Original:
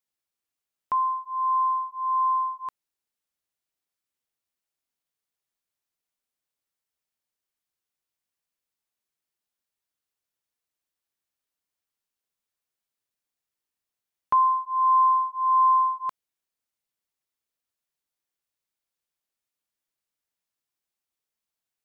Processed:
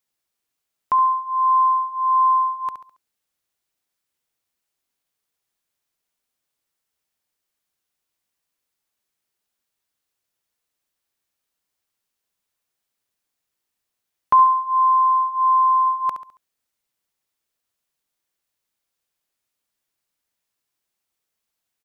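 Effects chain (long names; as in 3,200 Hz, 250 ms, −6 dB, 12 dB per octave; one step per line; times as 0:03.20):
0:14.43–0:15.87: downward compressor, threshold −21 dBFS, peak gain reduction 4.5 dB
repeating echo 69 ms, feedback 38%, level −10 dB
level +6.5 dB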